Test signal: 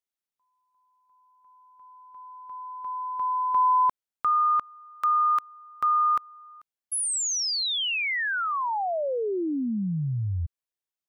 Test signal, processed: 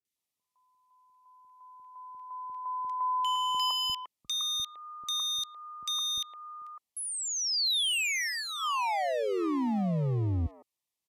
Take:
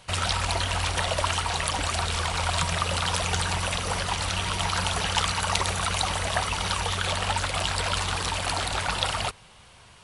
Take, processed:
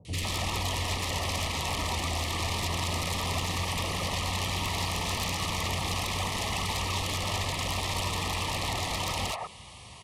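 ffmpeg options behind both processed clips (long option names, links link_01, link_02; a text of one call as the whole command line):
ffmpeg -i in.wav -filter_complex "[0:a]acrossover=split=4100[link_01][link_02];[link_02]acompressor=threshold=-44dB:ratio=4:attack=1:release=60[link_03];[link_01][link_03]amix=inputs=2:normalize=0,highpass=frequency=49:width=0.5412,highpass=frequency=49:width=1.3066,asplit=2[link_04][link_05];[link_05]acompressor=threshold=-33dB:ratio=8:attack=17:release=237:knee=6:detection=peak,volume=-1dB[link_06];[link_04][link_06]amix=inputs=2:normalize=0,aeval=exprs='0.0596*(abs(mod(val(0)/0.0596+3,4)-2)-1)':channel_layout=same,acrossover=split=490|1700[link_07][link_08][link_09];[link_09]adelay=50[link_10];[link_08]adelay=160[link_11];[link_07][link_11][link_10]amix=inputs=3:normalize=0,aresample=32000,aresample=44100,asuperstop=centerf=1500:order=8:qfactor=3.3" out.wav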